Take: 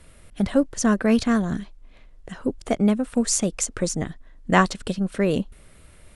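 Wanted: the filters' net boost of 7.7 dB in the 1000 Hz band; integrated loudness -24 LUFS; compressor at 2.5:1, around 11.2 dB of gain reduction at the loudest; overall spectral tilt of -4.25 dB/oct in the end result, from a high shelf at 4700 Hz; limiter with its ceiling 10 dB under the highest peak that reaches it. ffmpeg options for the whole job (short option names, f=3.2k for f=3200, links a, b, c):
-af "equalizer=f=1k:t=o:g=9,highshelf=f=4.7k:g=7.5,acompressor=threshold=-23dB:ratio=2.5,volume=5dB,alimiter=limit=-12dB:level=0:latency=1"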